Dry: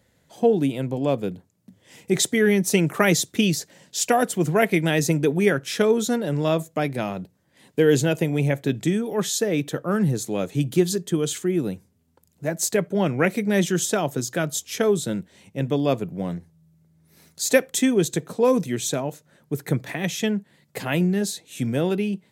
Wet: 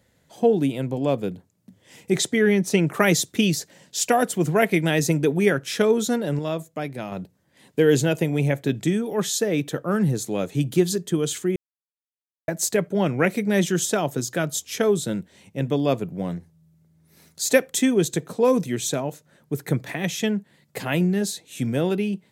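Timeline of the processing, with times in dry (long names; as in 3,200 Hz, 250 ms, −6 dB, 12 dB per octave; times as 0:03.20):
0:02.18–0:02.92: high-shelf EQ 11,000 Hz → 6,200 Hz −11.5 dB
0:06.39–0:07.12: clip gain −5.5 dB
0:11.56–0:12.48: silence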